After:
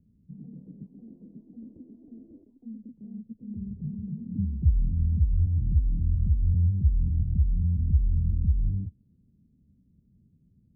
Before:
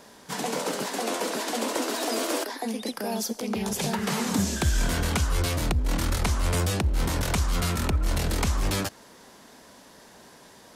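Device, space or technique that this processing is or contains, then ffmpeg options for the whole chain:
the neighbour's flat through the wall: -af "lowpass=f=180:w=0.5412,lowpass=f=180:w=1.3066,equalizer=f=83:t=o:w=0.77:g=5"

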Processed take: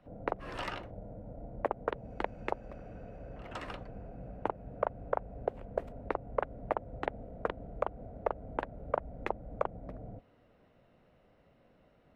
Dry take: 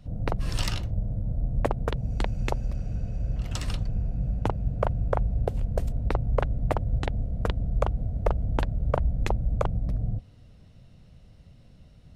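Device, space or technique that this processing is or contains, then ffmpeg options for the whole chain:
DJ mixer with the lows and highs turned down: -filter_complex "[0:a]acrossover=split=290 2300:gain=0.0794 1 0.0708[a][b][c];[a][b][c]amix=inputs=3:normalize=0,alimiter=limit=-16.5dB:level=0:latency=1:release=217,volume=1dB"

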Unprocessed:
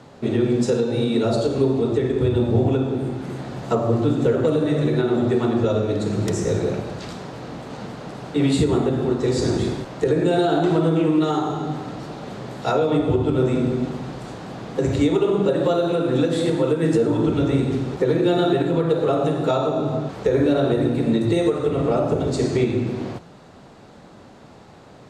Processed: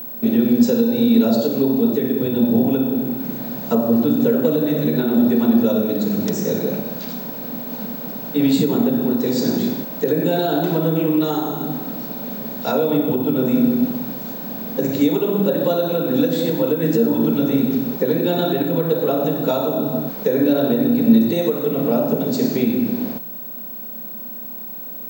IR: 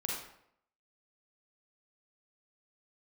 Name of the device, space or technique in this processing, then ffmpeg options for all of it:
old television with a line whistle: -af "highpass=f=170:w=0.5412,highpass=f=170:w=1.3066,equalizer=f=230:t=q:w=4:g=8,equalizer=f=360:t=q:w=4:g=-8,equalizer=f=750:t=q:w=4:g=-4,equalizer=f=1.2k:t=q:w=4:g=-9,equalizer=f=2k:t=q:w=4:g=-6,equalizer=f=3k:t=q:w=4:g=-4,lowpass=f=7.2k:w=0.5412,lowpass=f=7.2k:w=1.3066,aeval=exprs='val(0)+0.0251*sin(2*PI*15734*n/s)':c=same,volume=3dB"

